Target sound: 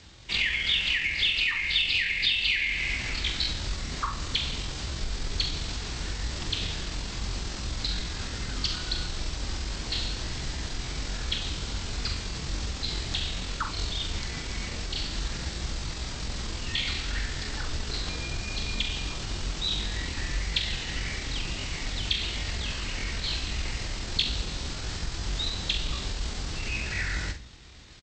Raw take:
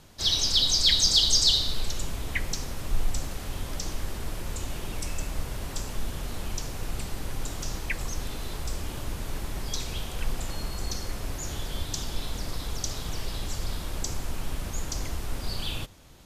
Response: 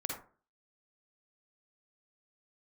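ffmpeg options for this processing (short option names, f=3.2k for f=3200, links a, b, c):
-af "highpass=46,bandreject=f=60:t=h:w=6,bandreject=f=120:t=h:w=6,bandreject=f=180:t=h:w=6,bandreject=f=240:t=h:w=6,bandreject=f=300:t=h:w=6,bandreject=f=360:t=h:w=6,bandreject=f=420:t=h:w=6,bandreject=f=480:t=h:w=6,adynamicequalizer=threshold=0.00282:dfrequency=100:dqfactor=3.8:tfrequency=100:tqfactor=3.8:attack=5:release=100:ratio=0.375:range=2:mode=boostabove:tftype=bell,atempo=0.58,acompressor=threshold=-28dB:ratio=20,aeval=exprs='0.112*(cos(1*acos(clip(val(0)/0.112,-1,1)))-cos(1*PI/2))+0.000708*(cos(6*acos(clip(val(0)/0.112,-1,1)))-cos(6*PI/2))':c=same,equalizer=f=125:t=o:w=1:g=4,equalizer=f=1k:t=o:w=1:g=-4,equalizer=f=8k:t=o:w=1:g=8,asetrate=24750,aresample=44100,atempo=1.7818,aecho=1:1:43|67:0.376|0.224,volume=2.5dB"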